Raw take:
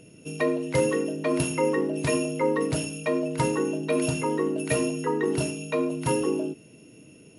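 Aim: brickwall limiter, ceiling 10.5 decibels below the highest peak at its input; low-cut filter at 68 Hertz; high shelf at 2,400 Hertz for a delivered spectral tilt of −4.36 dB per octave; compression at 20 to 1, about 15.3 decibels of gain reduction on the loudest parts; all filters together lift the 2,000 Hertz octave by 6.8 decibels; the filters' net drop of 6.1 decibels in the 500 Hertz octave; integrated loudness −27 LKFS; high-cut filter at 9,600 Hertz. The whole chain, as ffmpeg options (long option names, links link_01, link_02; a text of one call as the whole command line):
ffmpeg -i in.wav -af "highpass=68,lowpass=9600,equalizer=frequency=500:width_type=o:gain=-8,equalizer=frequency=2000:width_type=o:gain=6.5,highshelf=frequency=2400:gain=4,acompressor=threshold=-36dB:ratio=20,volume=15.5dB,alimiter=limit=-18dB:level=0:latency=1" out.wav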